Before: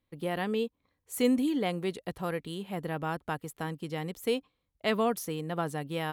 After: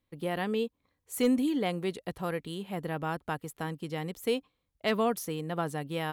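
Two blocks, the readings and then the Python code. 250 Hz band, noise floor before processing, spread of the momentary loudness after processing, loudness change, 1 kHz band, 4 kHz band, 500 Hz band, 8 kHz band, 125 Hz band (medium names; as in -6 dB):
0.0 dB, -81 dBFS, 9 LU, 0.0 dB, 0.0 dB, 0.0 dB, 0.0 dB, 0.0 dB, 0.0 dB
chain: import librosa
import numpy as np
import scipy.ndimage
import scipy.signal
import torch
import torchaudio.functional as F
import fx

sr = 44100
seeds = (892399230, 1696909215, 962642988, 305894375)

y = np.clip(x, -10.0 ** (-18.0 / 20.0), 10.0 ** (-18.0 / 20.0))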